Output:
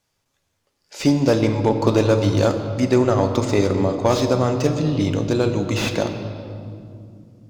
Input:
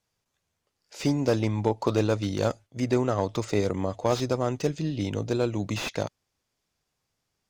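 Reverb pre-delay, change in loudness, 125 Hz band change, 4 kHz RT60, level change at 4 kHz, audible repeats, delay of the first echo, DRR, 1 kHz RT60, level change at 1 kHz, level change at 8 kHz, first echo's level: 3 ms, +8.0 dB, +8.0 dB, 1.7 s, +7.5 dB, none, none, 5.5 dB, 2.2 s, +7.5 dB, +7.0 dB, none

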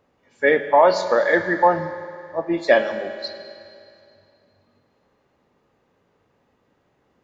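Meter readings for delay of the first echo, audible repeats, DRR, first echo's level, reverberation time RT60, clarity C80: none, none, 8.0 dB, none, 2.5 s, 10.0 dB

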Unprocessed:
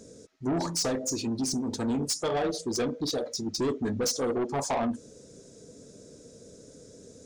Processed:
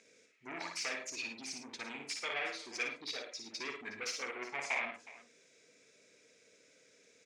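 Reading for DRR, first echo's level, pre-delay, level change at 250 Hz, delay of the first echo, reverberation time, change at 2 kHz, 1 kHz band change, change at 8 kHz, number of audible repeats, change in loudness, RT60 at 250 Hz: none, -5.0 dB, none, -22.5 dB, 57 ms, none, +4.5 dB, -10.5 dB, -12.5 dB, 3, -10.0 dB, none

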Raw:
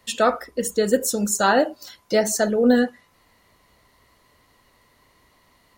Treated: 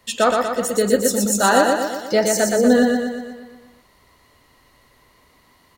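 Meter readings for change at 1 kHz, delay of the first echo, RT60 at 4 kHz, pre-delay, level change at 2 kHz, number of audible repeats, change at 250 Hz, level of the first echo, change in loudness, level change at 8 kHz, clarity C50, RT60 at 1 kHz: +4.0 dB, 0.12 s, none, none, +3.5 dB, 7, +3.0 dB, -3.5 dB, +3.0 dB, +3.5 dB, none, none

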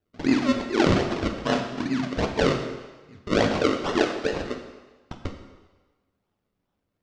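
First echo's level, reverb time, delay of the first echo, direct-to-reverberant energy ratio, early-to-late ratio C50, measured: none, 1.3 s, none, 4.0 dB, 7.0 dB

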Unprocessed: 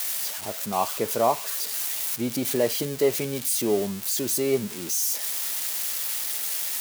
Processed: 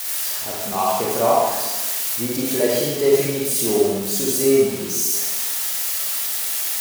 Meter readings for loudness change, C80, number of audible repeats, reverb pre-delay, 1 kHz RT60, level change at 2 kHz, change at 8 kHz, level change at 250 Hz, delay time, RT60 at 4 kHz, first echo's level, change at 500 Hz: +6.0 dB, 1.5 dB, none, 30 ms, 1.2 s, +5.5 dB, +5.5 dB, +5.5 dB, none, 1.2 s, none, +7.0 dB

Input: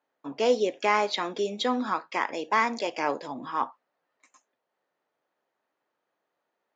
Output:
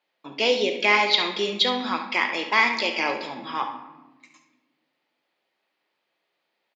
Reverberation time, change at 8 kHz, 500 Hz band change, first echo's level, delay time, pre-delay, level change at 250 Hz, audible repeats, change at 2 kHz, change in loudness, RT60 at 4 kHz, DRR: 1.2 s, n/a, +1.0 dB, -11.0 dB, 70 ms, 5 ms, +1.0 dB, 1, +9.0 dB, +5.0 dB, 0.75 s, 4.5 dB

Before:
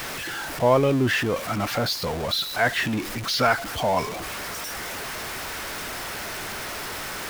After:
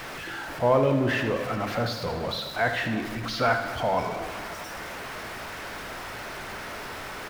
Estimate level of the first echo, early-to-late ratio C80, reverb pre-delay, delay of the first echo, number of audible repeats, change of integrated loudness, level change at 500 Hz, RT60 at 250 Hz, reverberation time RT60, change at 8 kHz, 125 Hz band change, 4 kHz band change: -11.0 dB, 9.0 dB, 25 ms, 77 ms, 1, -3.0 dB, -1.5 dB, 2.5 s, 2.4 s, -10.5 dB, -2.0 dB, -7.0 dB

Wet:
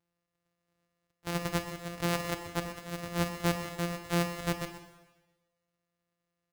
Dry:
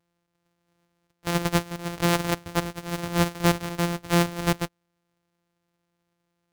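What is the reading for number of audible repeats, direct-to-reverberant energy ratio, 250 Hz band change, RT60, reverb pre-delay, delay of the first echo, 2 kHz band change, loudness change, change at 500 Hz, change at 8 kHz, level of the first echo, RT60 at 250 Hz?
1, 6.5 dB, -8.5 dB, 1.2 s, 21 ms, 0.126 s, -7.0 dB, -8.0 dB, -7.0 dB, -8.0 dB, -13.0 dB, 1.1 s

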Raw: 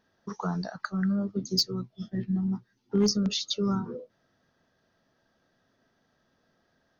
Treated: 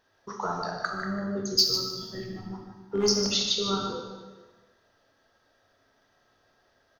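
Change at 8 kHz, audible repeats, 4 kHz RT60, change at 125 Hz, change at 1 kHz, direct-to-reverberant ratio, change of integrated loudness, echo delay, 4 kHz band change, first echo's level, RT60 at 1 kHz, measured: +5.5 dB, 1, 1.2 s, -6.5 dB, +6.0 dB, 0.0 dB, +2.0 dB, 0.151 s, +6.0 dB, -8.0 dB, 1.3 s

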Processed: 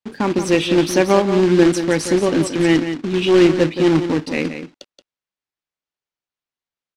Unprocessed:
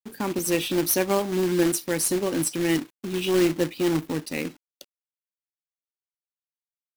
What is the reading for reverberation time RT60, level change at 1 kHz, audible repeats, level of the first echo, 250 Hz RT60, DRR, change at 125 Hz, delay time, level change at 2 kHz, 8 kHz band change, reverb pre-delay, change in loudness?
none, +9.0 dB, 1, -9.5 dB, none, none, +9.0 dB, 0.176 s, +8.5 dB, -1.5 dB, none, +8.0 dB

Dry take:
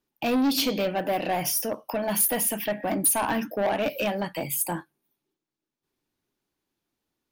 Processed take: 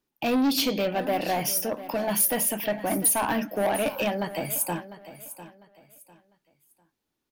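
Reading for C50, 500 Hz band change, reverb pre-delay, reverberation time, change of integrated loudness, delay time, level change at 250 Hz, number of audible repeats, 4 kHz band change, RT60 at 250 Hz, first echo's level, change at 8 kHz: none, 0.0 dB, none, none, 0.0 dB, 0.7 s, 0.0 dB, 2, 0.0 dB, none, -14.5 dB, 0.0 dB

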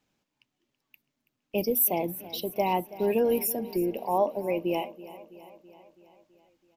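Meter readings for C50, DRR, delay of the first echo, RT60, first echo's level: none, none, 0.329 s, none, -17.0 dB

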